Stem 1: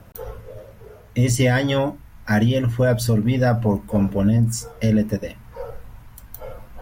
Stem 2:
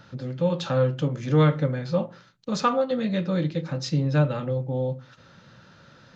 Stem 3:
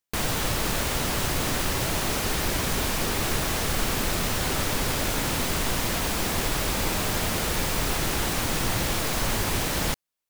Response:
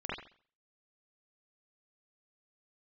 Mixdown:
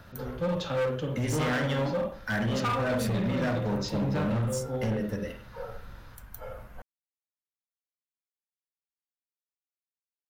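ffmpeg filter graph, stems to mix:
-filter_complex "[0:a]volume=-9dB,asplit=2[link_01][link_02];[link_02]volume=-7dB[link_03];[1:a]lowshelf=frequency=120:gain=-10.5,flanger=delay=4.8:depth=4.7:regen=66:speed=0.36:shape=sinusoidal,volume=-3dB,asplit=2[link_04][link_05];[link_05]volume=-3dB[link_06];[link_01]equalizer=frequency=1500:width=1.5:gain=8,acompressor=threshold=-35dB:ratio=1.5,volume=0dB[link_07];[3:a]atrim=start_sample=2205[link_08];[link_03][link_06]amix=inputs=2:normalize=0[link_09];[link_09][link_08]afir=irnorm=-1:irlink=0[link_10];[link_04][link_07][link_10]amix=inputs=3:normalize=0,volume=24.5dB,asoftclip=hard,volume=-24.5dB"

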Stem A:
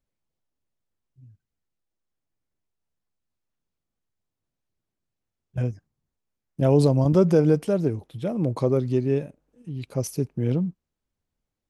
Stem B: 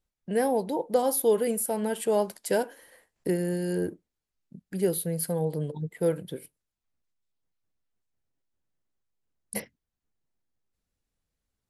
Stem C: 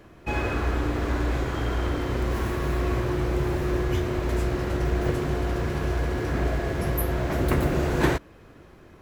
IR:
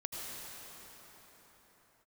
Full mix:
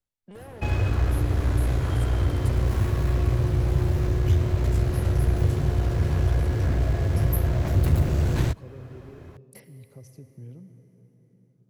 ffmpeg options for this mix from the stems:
-filter_complex "[0:a]volume=-19.5dB,asplit=2[link_01][link_02];[link_02]volume=-13.5dB[link_03];[1:a]equalizer=frequency=81:width_type=o:width=1.8:gain=-15,alimiter=limit=-23dB:level=0:latency=1:release=181,volume=33dB,asoftclip=hard,volume=-33dB,volume=-8dB,asplit=2[link_04][link_05];[link_05]volume=-9dB[link_06];[2:a]equalizer=frequency=590:width=1.5:gain=3.5,aeval=exprs='(tanh(7.94*val(0)+0.45)-tanh(0.45))/7.94':channel_layout=same,adelay=350,volume=1dB[link_07];[link_01][link_04]amix=inputs=2:normalize=0,acompressor=threshold=-47dB:ratio=6,volume=0dB[link_08];[3:a]atrim=start_sample=2205[link_09];[link_03][link_06]amix=inputs=2:normalize=0[link_10];[link_10][link_09]afir=irnorm=-1:irlink=0[link_11];[link_07][link_08][link_11]amix=inputs=3:normalize=0,equalizer=frequency=96:width_type=o:width=0.93:gain=13,acrossover=split=210|3000[link_12][link_13][link_14];[link_13]acompressor=threshold=-32dB:ratio=6[link_15];[link_12][link_15][link_14]amix=inputs=3:normalize=0"

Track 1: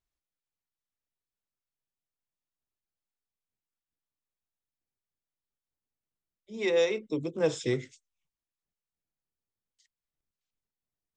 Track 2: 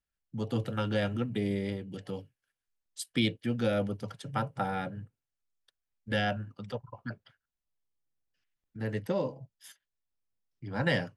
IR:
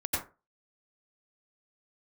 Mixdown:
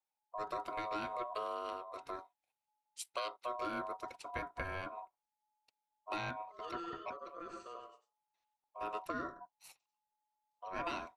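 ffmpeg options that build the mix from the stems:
-filter_complex "[0:a]highshelf=frequency=5500:gain=-11,alimiter=limit=-22dB:level=0:latency=1:release=32,volume=-19.5dB,asplit=2[link_01][link_02];[link_02]volume=-4.5dB[link_03];[1:a]acompressor=threshold=-30dB:ratio=6,volume=-3dB[link_04];[2:a]atrim=start_sample=2205[link_05];[link_03][link_05]afir=irnorm=-1:irlink=0[link_06];[link_01][link_04][link_06]amix=inputs=3:normalize=0,aeval=exprs='val(0)*sin(2*PI*850*n/s)':channel_layout=same"

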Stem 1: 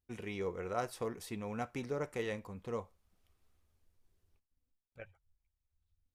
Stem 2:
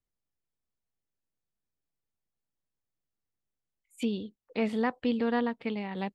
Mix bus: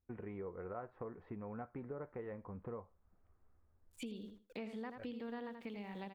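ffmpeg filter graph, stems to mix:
ffmpeg -i stem1.wav -i stem2.wav -filter_complex "[0:a]lowpass=frequency=1600:width=0.5412,lowpass=frequency=1600:width=1.3066,volume=2.5dB[link_01];[1:a]aeval=exprs='val(0)*gte(abs(val(0)),0.00168)':channel_layout=same,volume=-6.5dB,asplit=2[link_02][link_03];[link_03]volume=-9dB,aecho=0:1:82|164|246:1|0.16|0.0256[link_04];[link_01][link_02][link_04]amix=inputs=3:normalize=0,acompressor=threshold=-44dB:ratio=4" out.wav

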